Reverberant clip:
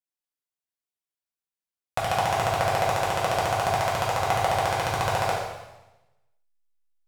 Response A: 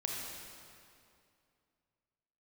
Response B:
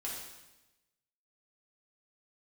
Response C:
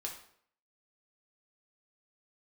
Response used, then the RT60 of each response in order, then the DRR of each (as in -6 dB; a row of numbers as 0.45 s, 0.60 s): B; 2.5 s, 1.0 s, 0.65 s; -2.0 dB, -5.5 dB, -0.5 dB